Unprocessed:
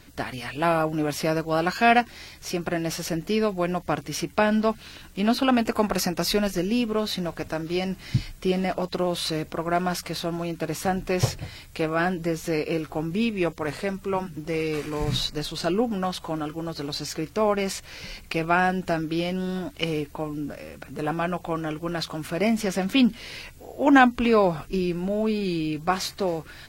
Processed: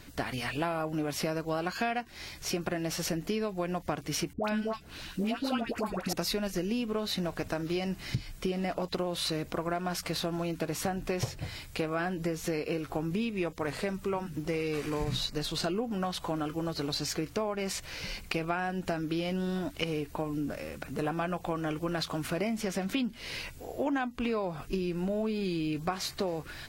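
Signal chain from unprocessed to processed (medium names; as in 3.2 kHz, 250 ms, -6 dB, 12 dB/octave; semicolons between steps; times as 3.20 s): compression 10:1, threshold -28 dBFS, peak gain reduction 17 dB; 4.33–6.13 s: phase dispersion highs, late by 109 ms, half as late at 1 kHz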